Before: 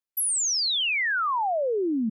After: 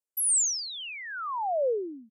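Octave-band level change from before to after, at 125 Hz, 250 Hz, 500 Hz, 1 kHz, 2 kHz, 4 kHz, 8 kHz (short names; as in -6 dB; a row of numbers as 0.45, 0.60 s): n/a, -15.0 dB, -1.5 dB, -5.5 dB, -12.5 dB, -10.5 dB, 0.0 dB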